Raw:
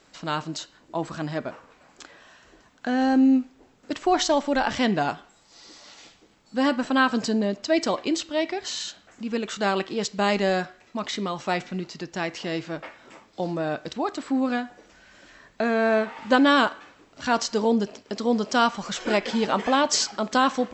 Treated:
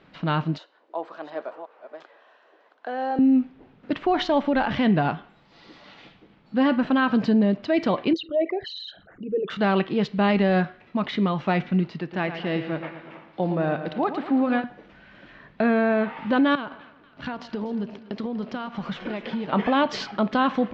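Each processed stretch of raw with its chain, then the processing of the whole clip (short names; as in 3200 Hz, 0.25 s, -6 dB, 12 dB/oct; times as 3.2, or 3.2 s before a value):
0.58–3.19 reverse delay 0.361 s, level -9 dB + HPF 460 Hz 24 dB/oct + bell 2500 Hz -10 dB 2.4 oct
8.13–9.5 formant sharpening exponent 3 + bell 230 Hz -13 dB 0.29 oct
11.98–14.64 tone controls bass -6 dB, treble -5 dB + feedback echo 0.113 s, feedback 54%, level -10 dB
16.55–19.53 G.711 law mismatch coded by A + compressor 8:1, threshold -31 dBFS + split-band echo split 1200 Hz, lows 0.127 s, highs 0.243 s, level -15 dB
whole clip: LPF 3400 Hz 24 dB/oct; bell 160 Hz +9 dB 1.1 oct; limiter -15 dBFS; gain +2 dB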